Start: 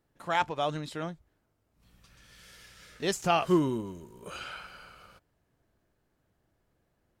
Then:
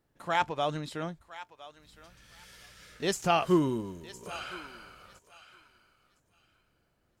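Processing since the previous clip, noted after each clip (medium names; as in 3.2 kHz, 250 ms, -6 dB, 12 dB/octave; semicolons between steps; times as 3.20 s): thinning echo 1011 ms, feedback 22%, high-pass 1 kHz, level -14 dB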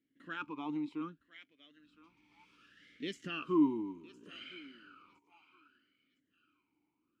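in parallel at +2.5 dB: peak limiter -21.5 dBFS, peak gain reduction 9 dB; on the sum: talking filter i-u 0.66 Hz; trim -2 dB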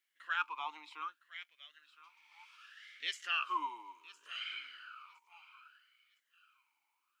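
high-pass 870 Hz 24 dB/octave; trim +7.5 dB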